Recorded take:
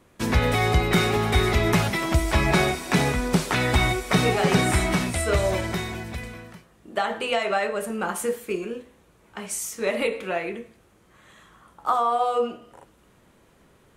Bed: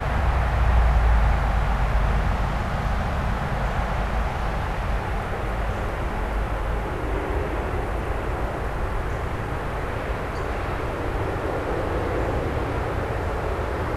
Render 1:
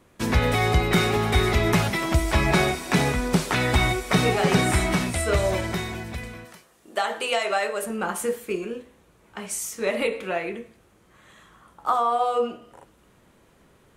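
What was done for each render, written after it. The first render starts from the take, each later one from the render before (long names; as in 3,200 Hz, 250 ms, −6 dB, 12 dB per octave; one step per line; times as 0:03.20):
0:06.45–0:07.84: bass and treble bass −12 dB, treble +7 dB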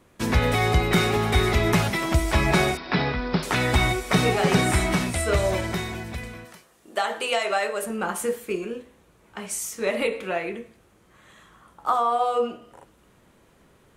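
0:02.77–0:03.43: Chebyshev low-pass with heavy ripple 5,300 Hz, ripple 3 dB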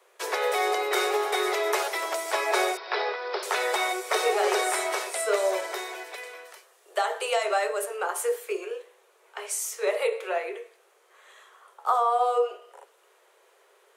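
Butterworth high-pass 380 Hz 96 dB per octave
dynamic equaliser 2,700 Hz, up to −5 dB, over −38 dBFS, Q 0.95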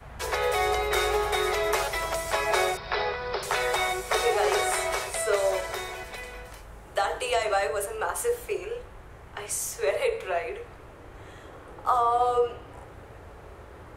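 mix in bed −20 dB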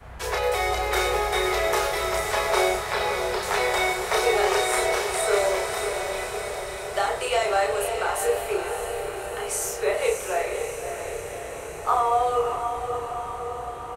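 double-tracking delay 32 ms −3 dB
feedback delay with all-pass diffusion 599 ms, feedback 69%, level −7 dB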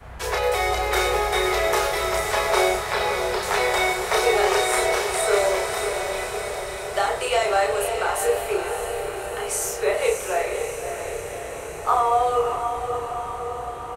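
level +2 dB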